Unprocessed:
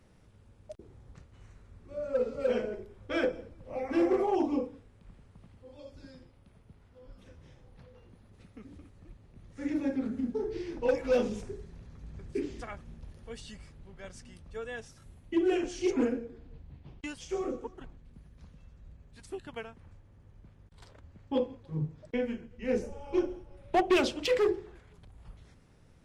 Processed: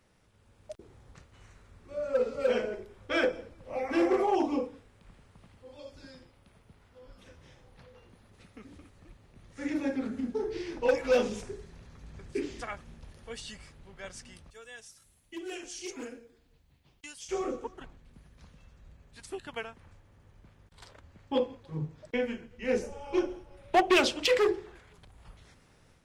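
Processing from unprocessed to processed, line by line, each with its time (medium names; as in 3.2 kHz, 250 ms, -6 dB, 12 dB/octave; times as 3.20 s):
14.50–17.29 s: pre-emphasis filter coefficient 0.8
whole clip: bass shelf 490 Hz -9 dB; level rider gain up to 6 dB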